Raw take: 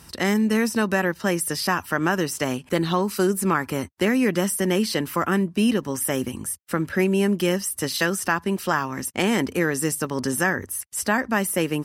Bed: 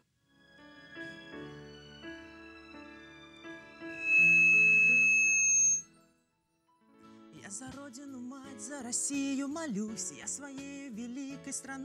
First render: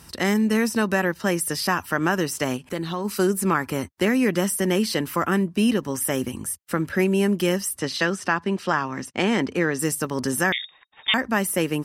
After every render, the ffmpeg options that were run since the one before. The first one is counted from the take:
-filter_complex "[0:a]asplit=3[s0][s1][s2];[s0]afade=t=out:st=2.56:d=0.02[s3];[s1]acompressor=threshold=0.02:ratio=1.5:attack=3.2:release=140:knee=1:detection=peak,afade=t=in:st=2.56:d=0.02,afade=t=out:st=3.04:d=0.02[s4];[s2]afade=t=in:st=3.04:d=0.02[s5];[s3][s4][s5]amix=inputs=3:normalize=0,asplit=3[s6][s7][s8];[s6]afade=t=out:st=7.76:d=0.02[s9];[s7]highpass=100,lowpass=5600,afade=t=in:st=7.76:d=0.02,afade=t=out:st=9.78:d=0.02[s10];[s8]afade=t=in:st=9.78:d=0.02[s11];[s9][s10][s11]amix=inputs=3:normalize=0,asettb=1/sr,asplit=3[s12][s13][s14];[s12]atrim=end=10.524[s15];[s13]atrim=start=10.52:end=11.14,asetpts=PTS-STARTPTS,afade=t=in:d=0.004:c=qsin,afade=t=out:st=0.616:d=0.004:c=qsin,lowpass=f=3200:t=q:w=0.5098,lowpass=f=3200:t=q:w=0.6013,lowpass=f=3200:t=q:w=0.9,lowpass=f=3200:t=q:w=2.563,afreqshift=-3800[s16];[s14]atrim=start=11.136[s17];[s15][s16]acrossfade=d=0.004:c1=hsin:c2=qsin[s18];[s18][s17]acrossfade=d=0.004:c1=qsin:c2=hsin"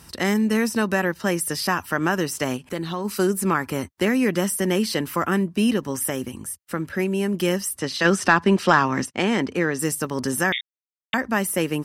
-filter_complex "[0:a]asplit=3[s0][s1][s2];[s0]afade=t=out:st=8.04:d=0.02[s3];[s1]acontrast=86,afade=t=in:st=8.04:d=0.02,afade=t=out:st=9.05:d=0.02[s4];[s2]afade=t=in:st=9.05:d=0.02[s5];[s3][s4][s5]amix=inputs=3:normalize=0,asplit=5[s6][s7][s8][s9][s10];[s6]atrim=end=6.102[s11];[s7]atrim=start=6.098:end=7.342,asetpts=PTS-STARTPTS,volume=0.708[s12];[s8]atrim=start=7.338:end=10.61,asetpts=PTS-STARTPTS,afade=t=out:st=3.268:d=0.004:c=hsin[s13];[s9]atrim=start=10.61:end=11.13,asetpts=PTS-STARTPTS,volume=0[s14];[s10]atrim=start=11.13,asetpts=PTS-STARTPTS,afade=t=in:d=0.004:c=hsin[s15];[s11][s12]acrossfade=d=0.004:c1=hsin:c2=hsin[s16];[s13][s14][s15]concat=n=3:v=0:a=1[s17];[s16][s17]acrossfade=d=0.004:c1=hsin:c2=hsin"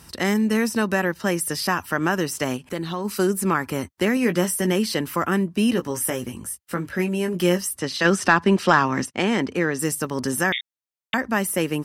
-filter_complex "[0:a]asettb=1/sr,asplit=3[s0][s1][s2];[s0]atrim=end=4.154[s3];[s1]atrim=start=4.15:end=4.72,asetpts=PTS-STARTPTS,afade=t=in:d=0.004:c=qsin,afade=t=out:st=0.566:d=0.004:c=qsin,asplit=2[s4][s5];[s5]adelay=17,volume=0.376[s6];[s4][s6]amix=inputs=2:normalize=0,atrim=end_sample=25137[s7];[s2]atrim=start=4.716[s8];[s3][s7]acrossfade=d=0.004:c1=hsin:c2=qsin[s9];[s9][s8]acrossfade=d=0.004:c1=qsin:c2=hsin,asettb=1/sr,asplit=3[s10][s11][s12];[s10]atrim=end=5.704[s13];[s11]atrim=start=5.7:end=7.67,asetpts=PTS-STARTPTS,afade=t=in:d=0.004:c=qsin,afade=t=out:st=1.966:d=0.004:c=qsin,asplit=2[s14][s15];[s15]adelay=17,volume=0.473[s16];[s14][s16]amix=inputs=2:normalize=0,atrim=end_sample=86877[s17];[s12]atrim=start=7.666[s18];[s13][s17]acrossfade=d=0.004:c1=hsin:c2=qsin[s19];[s19][s18]acrossfade=d=0.004:c1=qsin:c2=hsin"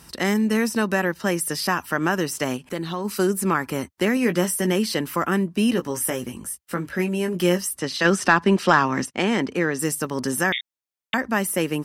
-af "equalizer=f=93:t=o:w=0.45:g=-8.5"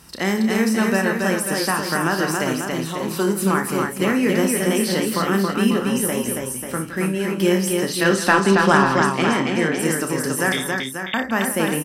-filter_complex "[0:a]asplit=2[s0][s1];[s1]adelay=31,volume=0.355[s2];[s0][s2]amix=inputs=2:normalize=0,aecho=1:1:59|165|277|541|594:0.299|0.211|0.668|0.398|0.15"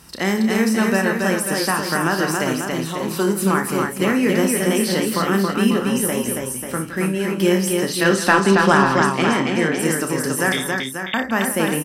-af "volume=1.12,alimiter=limit=0.794:level=0:latency=1"

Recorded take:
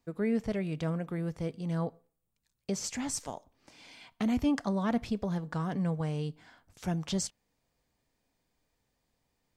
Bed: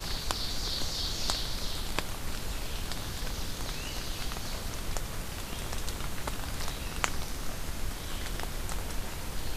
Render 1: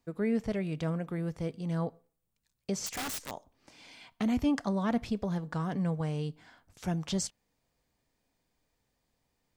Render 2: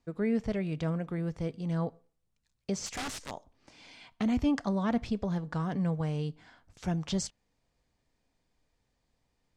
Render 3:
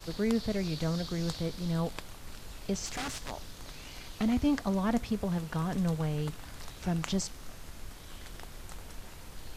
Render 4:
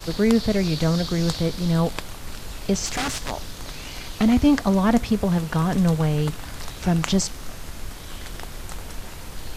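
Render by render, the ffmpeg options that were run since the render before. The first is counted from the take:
-filter_complex "[0:a]asettb=1/sr,asplit=3[s0][s1][s2];[s0]atrim=end=2.864[s3];[s1]atrim=start=2.86:end=3.31,asetpts=PTS-STARTPTS,afade=t=in:d=0.004:c=qsin,afade=t=out:st=0.446:d=0.004:c=qsin,aeval=exprs='(mod(35.5*val(0)+1,2)-1)/35.5':c=same[s4];[s2]atrim=start=3.306[s5];[s3][s4]acrossfade=d=0.004:c1=hsin:c2=qsin[s6];[s6][s5]acrossfade=d=0.004:c1=qsin:c2=hsin"
-af "lowpass=7800,lowshelf=f=71:g=6.5"
-filter_complex "[1:a]volume=0.316[s0];[0:a][s0]amix=inputs=2:normalize=0"
-af "volume=3.35"

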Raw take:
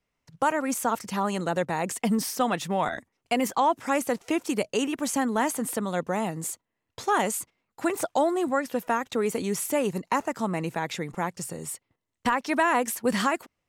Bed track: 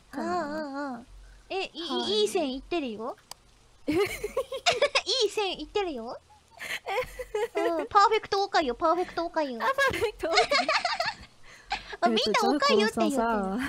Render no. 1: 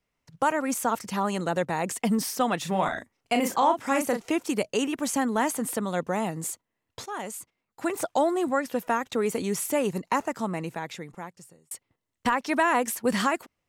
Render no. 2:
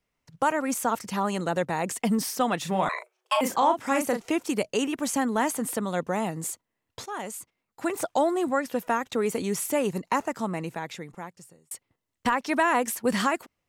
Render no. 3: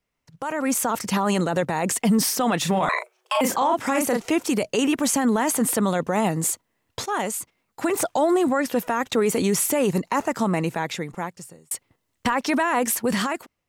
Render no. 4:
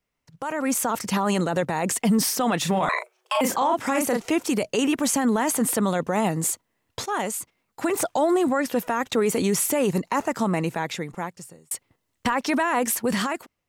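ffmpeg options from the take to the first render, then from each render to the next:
-filter_complex "[0:a]asettb=1/sr,asplit=3[s0][s1][s2];[s0]atrim=end=2.614[s3];[s1]atrim=start=2.61:end=4.29,asetpts=PTS-STARTPTS,afade=t=in:d=0.004:c=qsin,afade=t=out:st=1.676:d=0.004:c=qsin,asplit=2[s4][s5];[s5]adelay=37,volume=0.501[s6];[s4][s6]amix=inputs=2:normalize=0,atrim=end_sample=74088[s7];[s2]atrim=start=4.286[s8];[s3][s7]acrossfade=d=0.004:c1=hsin:c2=qsin[s9];[s9][s8]acrossfade=d=0.004:c1=qsin:c2=hsin,asplit=3[s10][s11][s12];[s10]atrim=end=7.06,asetpts=PTS-STARTPTS,afade=t=out:st=7.056:d=0.004:c=hsin:silence=0.211349[s13];[s11]atrim=start=7.06:end=11.71,asetpts=PTS-STARTPTS,afade=t=in:d=1.11:silence=0.211349,afade=t=out:st=3.15:d=1.5[s14];[s12]atrim=start=11.71,asetpts=PTS-STARTPTS,afade=t=in:d=0.004:c=hsin[s15];[s13][s14][s15]concat=n=3:v=0:a=1"
-filter_complex "[0:a]asettb=1/sr,asplit=3[s0][s1][s2];[s0]atrim=end=2.894[s3];[s1]atrim=start=2.89:end=3.41,asetpts=PTS-STARTPTS,afade=t=in:d=0.004:c=qsin,afade=t=out:st=0.516:d=0.004:c=qsin,afreqshift=370[s4];[s2]atrim=start=3.406[s5];[s3][s4]acrossfade=d=0.004:c1=hsin:c2=qsin[s6];[s6][s5]acrossfade=d=0.004:c1=qsin:c2=hsin"
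-af "alimiter=limit=0.0794:level=0:latency=1:release=16,dynaudnorm=f=110:g=11:m=2.82"
-af "volume=0.891"

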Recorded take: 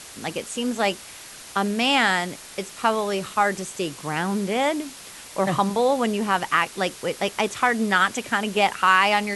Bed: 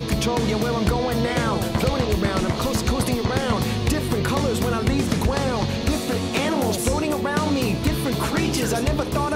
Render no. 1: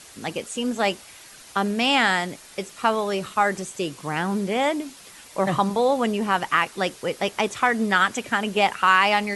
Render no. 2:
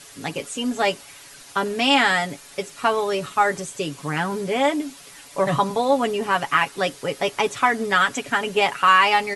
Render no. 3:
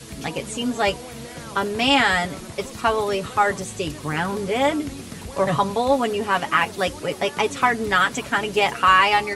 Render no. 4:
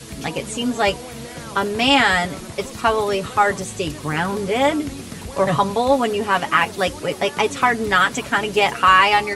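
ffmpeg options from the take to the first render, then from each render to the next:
-af "afftdn=nr=6:nf=-42"
-af "aecho=1:1:7.1:0.67"
-filter_complex "[1:a]volume=0.178[s0];[0:a][s0]amix=inputs=2:normalize=0"
-af "volume=1.33,alimiter=limit=0.794:level=0:latency=1"

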